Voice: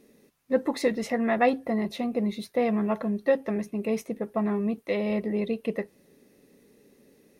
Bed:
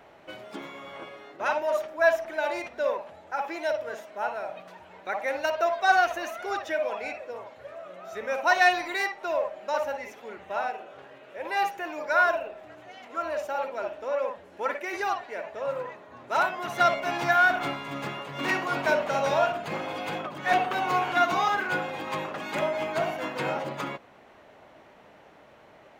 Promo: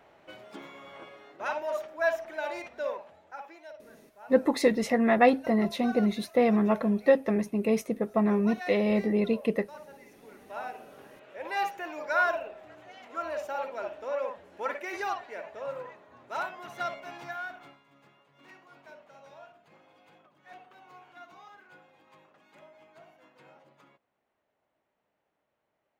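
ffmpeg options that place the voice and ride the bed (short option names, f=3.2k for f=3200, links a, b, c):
-filter_complex "[0:a]adelay=3800,volume=2dB[a];[1:a]volume=10dB,afade=t=out:st=2.83:d=0.8:silence=0.211349,afade=t=in:st=9.94:d=1.36:silence=0.16788,afade=t=out:st=14.96:d=2.88:silence=0.0668344[b];[a][b]amix=inputs=2:normalize=0"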